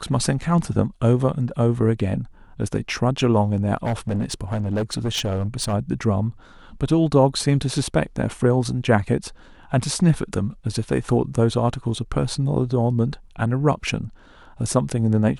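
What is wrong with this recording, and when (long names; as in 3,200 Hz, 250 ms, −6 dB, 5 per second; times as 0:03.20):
0:03.77–0:05.74: clipping −19 dBFS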